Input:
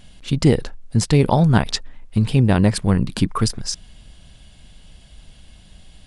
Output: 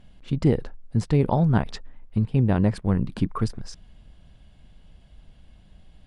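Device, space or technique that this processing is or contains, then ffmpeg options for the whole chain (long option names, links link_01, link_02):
through cloth: -filter_complex "[0:a]highshelf=frequency=3000:gain=-16,asettb=1/sr,asplit=3[link_01][link_02][link_03];[link_01]atrim=end=2.254[link_04];[link_02]atrim=start=2.25:end=3.02,asetpts=PTS-STARTPTS,afade=type=in:duration=0.004:curve=qsin,afade=type=out:start_time=0.766:duration=0.004:curve=qsin,agate=range=-10dB:threshold=-24dB:ratio=16:detection=peak[link_05];[link_03]atrim=start=3.016[link_06];[link_04][link_05]acrossfade=duration=0.004:curve1=hsin:curve2=qsin[link_07];[link_07][link_06]acrossfade=duration=0.004:curve1=qsin:curve2=hsin,volume=-5dB"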